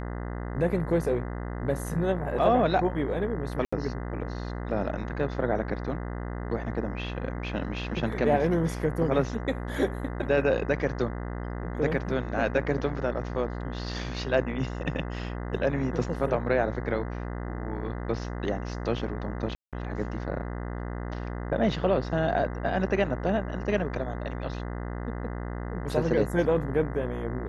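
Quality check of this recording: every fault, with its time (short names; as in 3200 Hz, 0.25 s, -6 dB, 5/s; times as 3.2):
buzz 60 Hz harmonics 34 -34 dBFS
3.65–3.73 gap 75 ms
19.55–19.73 gap 0.177 s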